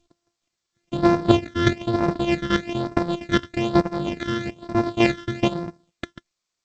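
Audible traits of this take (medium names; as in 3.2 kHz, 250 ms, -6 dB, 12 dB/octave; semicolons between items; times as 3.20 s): a buzz of ramps at a fixed pitch in blocks of 128 samples; phasing stages 12, 1.1 Hz, lowest notch 770–3100 Hz; chopped level 2.4 Hz, depth 65%, duty 15%; G.722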